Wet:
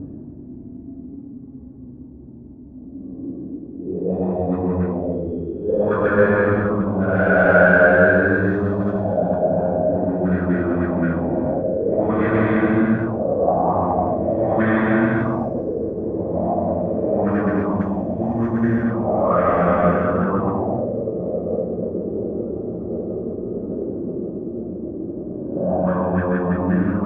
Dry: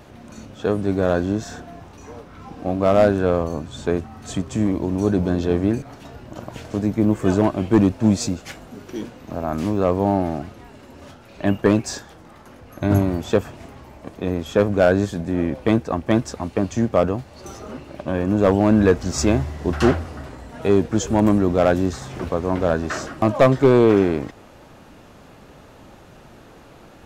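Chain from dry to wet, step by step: Paulstretch 5.6×, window 0.25 s, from 13.48; dynamic EQ 180 Hz, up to +7 dB, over -41 dBFS, Q 5.3; on a send: diffused feedback echo 1.776 s, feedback 73%, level -11.5 dB; on the sum: envelope low-pass 230–1600 Hz up, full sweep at -14 dBFS; gain -1.5 dB

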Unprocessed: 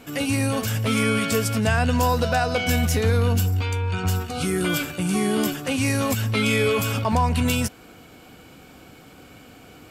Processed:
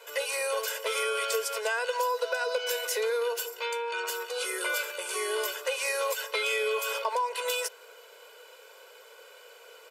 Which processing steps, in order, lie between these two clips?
elliptic high-pass 450 Hz, stop band 50 dB; comb 2 ms, depth 86%; compressor, threshold -22 dBFS, peak gain reduction 7.5 dB; gain -3.5 dB

